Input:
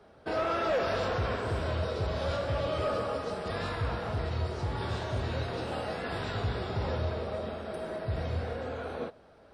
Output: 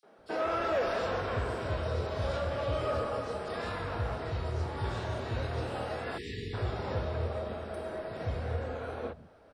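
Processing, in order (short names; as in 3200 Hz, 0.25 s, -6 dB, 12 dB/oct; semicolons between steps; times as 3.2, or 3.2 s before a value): spectral delete 6.15–6.51, 480–1700 Hz; three bands offset in time highs, mids, lows 30/180 ms, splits 170/4100 Hz; gain -1 dB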